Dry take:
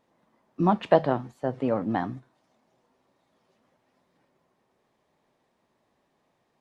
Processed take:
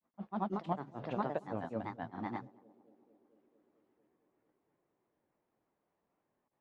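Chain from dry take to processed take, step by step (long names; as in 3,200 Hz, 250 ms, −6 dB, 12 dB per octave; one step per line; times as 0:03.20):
granular cloud 126 ms, grains 29 per second, spray 533 ms, pitch spread up and down by 3 semitones
feedback echo with a band-pass in the loop 224 ms, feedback 82%, band-pass 380 Hz, level −22 dB
low-pass that shuts in the quiet parts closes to 2,200 Hz, open at −26 dBFS
level −7.5 dB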